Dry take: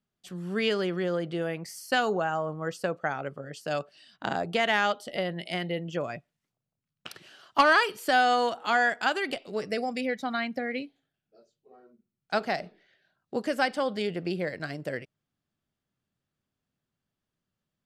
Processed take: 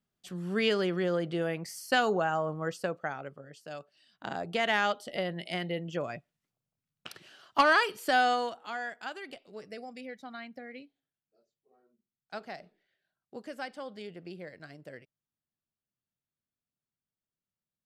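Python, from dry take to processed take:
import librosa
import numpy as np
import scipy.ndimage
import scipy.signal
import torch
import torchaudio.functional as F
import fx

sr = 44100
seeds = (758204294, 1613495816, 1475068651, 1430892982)

y = fx.gain(x, sr, db=fx.line((2.61, -0.5), (3.8, -12.5), (4.69, -2.5), (8.26, -2.5), (8.72, -13.0)))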